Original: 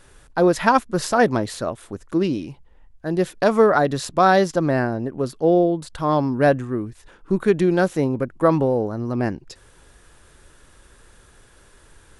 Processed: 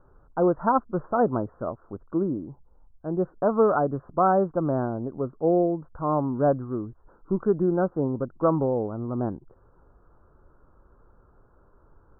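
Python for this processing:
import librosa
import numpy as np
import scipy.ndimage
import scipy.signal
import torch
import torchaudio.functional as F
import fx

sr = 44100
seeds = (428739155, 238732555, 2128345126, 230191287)

y = scipy.signal.sosfilt(scipy.signal.butter(12, 1400.0, 'lowpass', fs=sr, output='sos'), x)
y = y * librosa.db_to_amplitude(-5.0)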